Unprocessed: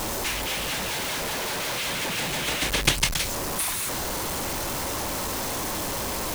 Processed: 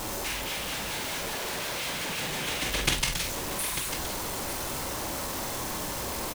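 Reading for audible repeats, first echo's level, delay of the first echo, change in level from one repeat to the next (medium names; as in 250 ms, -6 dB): 2, -6.0 dB, 46 ms, no regular repeats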